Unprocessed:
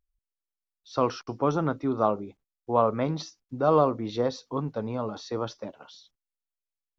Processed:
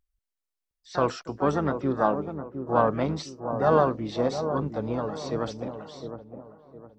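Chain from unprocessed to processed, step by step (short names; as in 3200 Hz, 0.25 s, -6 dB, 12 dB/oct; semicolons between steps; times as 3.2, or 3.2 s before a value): harmoniser -12 st -15 dB, +5 st -10 dB; dark delay 0.71 s, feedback 35%, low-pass 930 Hz, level -8 dB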